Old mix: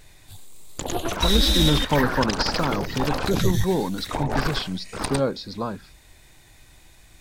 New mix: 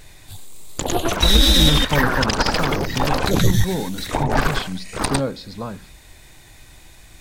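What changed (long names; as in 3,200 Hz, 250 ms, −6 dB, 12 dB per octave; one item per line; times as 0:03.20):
speech: send +10.0 dB
background +6.0 dB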